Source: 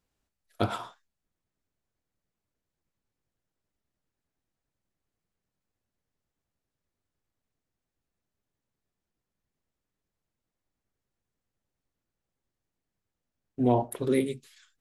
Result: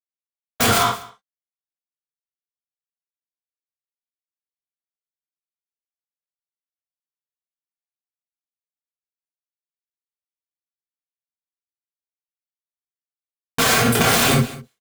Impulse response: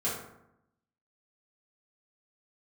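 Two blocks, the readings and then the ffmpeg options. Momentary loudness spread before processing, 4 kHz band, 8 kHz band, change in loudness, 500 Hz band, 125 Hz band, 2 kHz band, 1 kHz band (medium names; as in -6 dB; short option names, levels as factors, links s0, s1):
18 LU, +24.5 dB, +26.0 dB, +11.5 dB, +6.0 dB, +11.0 dB, +23.5 dB, +13.5 dB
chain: -filter_complex "[0:a]lowpass=5000,agate=range=0.447:threshold=0.002:ratio=16:detection=peak,aemphasis=mode=production:type=bsi,aphaser=in_gain=1:out_gain=1:delay=1.5:decay=0.2:speed=0.35:type=sinusoidal,asubboost=boost=9.5:cutoff=210,asplit=2[s0][s1];[s1]acompressor=threshold=0.02:ratio=4,volume=1[s2];[s0][s2]amix=inputs=2:normalize=0,aeval=exprs='sgn(val(0))*max(abs(val(0))-0.00376,0)':c=same,aeval=exprs='0.473*(cos(1*acos(clip(val(0)/0.473,-1,1)))-cos(1*PI/2))+0.106*(cos(4*acos(clip(val(0)/0.473,-1,1)))-cos(4*PI/2))+0.0422*(cos(8*acos(clip(val(0)/0.473,-1,1)))-cos(8*PI/2))':c=same,aeval=exprs='(mod(15.8*val(0)+1,2)-1)/15.8':c=same,aecho=1:1:197:0.0708[s3];[1:a]atrim=start_sample=2205,atrim=end_sample=3969[s4];[s3][s4]afir=irnorm=-1:irlink=0,alimiter=level_in=11.9:limit=0.891:release=50:level=0:latency=1,volume=0.501"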